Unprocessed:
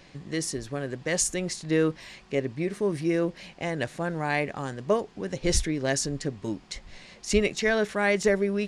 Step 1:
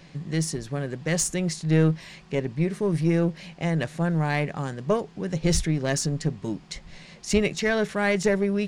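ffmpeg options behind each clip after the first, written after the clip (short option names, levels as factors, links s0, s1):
-filter_complex "[0:a]equalizer=f=160:t=o:w=0.36:g=12,asplit=2[s0][s1];[s1]aeval=exprs='clip(val(0),-1,0.0473)':c=same,volume=0.631[s2];[s0][s2]amix=inputs=2:normalize=0,volume=0.668"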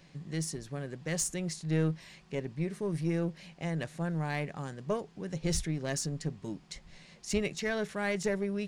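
-af "highshelf=f=7400:g=5,volume=0.355"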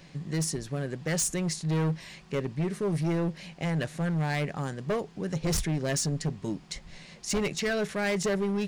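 -af "asoftclip=type=hard:threshold=0.0299,volume=2.11"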